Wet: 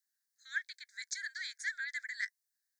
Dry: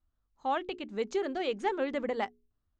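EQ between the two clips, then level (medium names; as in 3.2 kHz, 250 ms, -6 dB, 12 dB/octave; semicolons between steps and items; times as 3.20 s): steep high-pass 1.6 kHz 96 dB/octave; Butterworth band-stop 2.8 kHz, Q 1.1; +10.5 dB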